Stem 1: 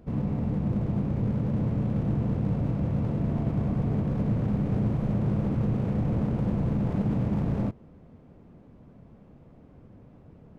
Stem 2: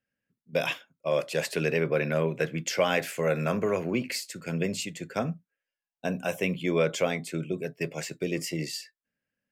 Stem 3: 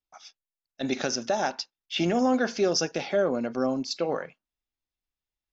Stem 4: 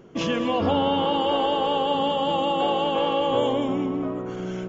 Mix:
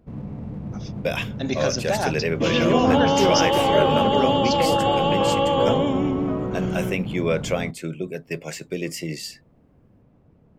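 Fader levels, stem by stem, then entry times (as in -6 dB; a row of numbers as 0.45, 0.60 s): -5.0, +2.0, +2.0, +2.5 dB; 0.00, 0.50, 0.60, 2.25 s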